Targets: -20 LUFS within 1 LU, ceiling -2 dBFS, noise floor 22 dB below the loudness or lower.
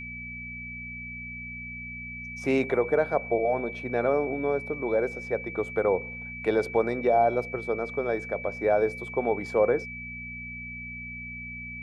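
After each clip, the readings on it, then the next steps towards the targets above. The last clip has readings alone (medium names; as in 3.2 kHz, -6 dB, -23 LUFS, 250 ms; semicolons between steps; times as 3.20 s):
hum 60 Hz; highest harmonic 240 Hz; hum level -41 dBFS; steady tone 2.3 kHz; tone level -37 dBFS; loudness -28.5 LUFS; peak level -11.5 dBFS; loudness target -20.0 LUFS
-> de-hum 60 Hz, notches 4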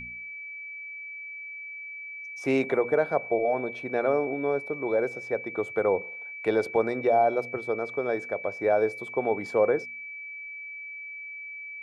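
hum not found; steady tone 2.3 kHz; tone level -37 dBFS
-> band-stop 2.3 kHz, Q 30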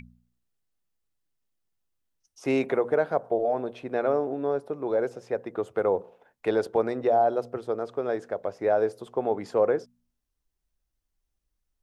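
steady tone not found; loudness -27.5 LUFS; peak level -12.0 dBFS; loudness target -20.0 LUFS
-> trim +7.5 dB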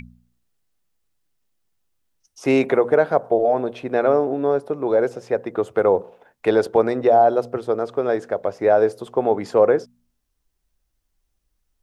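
loudness -20.0 LUFS; peak level -4.5 dBFS; noise floor -73 dBFS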